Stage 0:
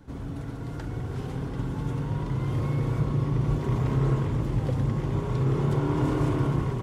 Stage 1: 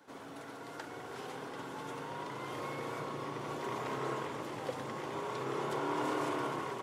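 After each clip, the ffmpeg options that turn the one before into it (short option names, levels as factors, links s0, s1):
-af "highpass=540"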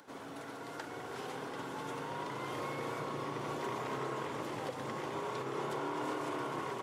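-af "acompressor=mode=upward:threshold=0.00126:ratio=2.5,alimiter=level_in=2:limit=0.0631:level=0:latency=1:release=192,volume=0.501,volume=1.19"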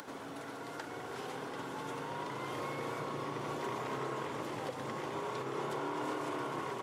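-af "acompressor=mode=upward:threshold=0.01:ratio=2.5"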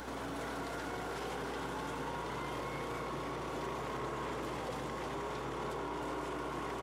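-af "alimiter=level_in=5.31:limit=0.0631:level=0:latency=1:release=14,volume=0.188,aeval=exprs='val(0)+0.00141*(sin(2*PI*60*n/s)+sin(2*PI*2*60*n/s)/2+sin(2*PI*3*60*n/s)/3+sin(2*PI*4*60*n/s)/4+sin(2*PI*5*60*n/s)/5)':c=same,aecho=1:1:312:0.473,volume=1.88"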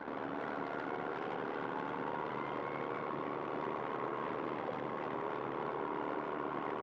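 -af "tremolo=f=75:d=0.71,highpass=180,lowpass=2300,anlmdn=0.00398,volume=1.68"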